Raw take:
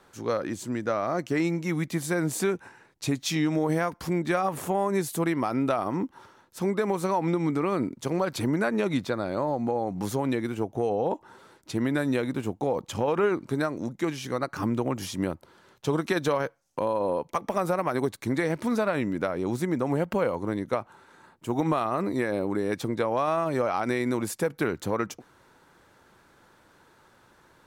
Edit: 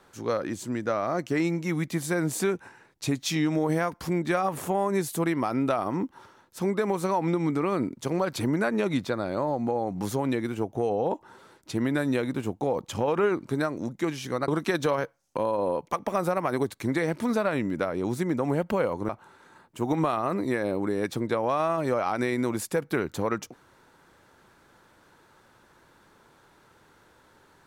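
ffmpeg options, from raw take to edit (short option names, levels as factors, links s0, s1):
-filter_complex "[0:a]asplit=3[s0][s1][s2];[s0]atrim=end=14.482[s3];[s1]atrim=start=15.898:end=20.512[s4];[s2]atrim=start=20.768[s5];[s3][s4]acrossfade=d=0.004:c1=hsin:c2=hsin[s6];[s6][s5]acrossfade=d=0.004:c1=hsin:c2=hsin"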